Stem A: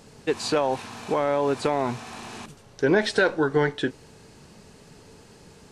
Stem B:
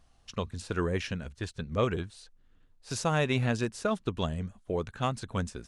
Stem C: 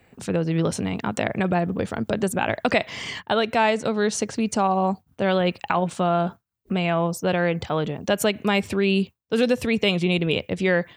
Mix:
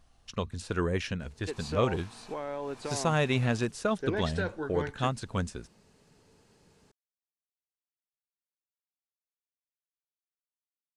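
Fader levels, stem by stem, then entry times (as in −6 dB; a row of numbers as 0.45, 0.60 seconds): −13.0 dB, +0.5 dB, muted; 1.20 s, 0.00 s, muted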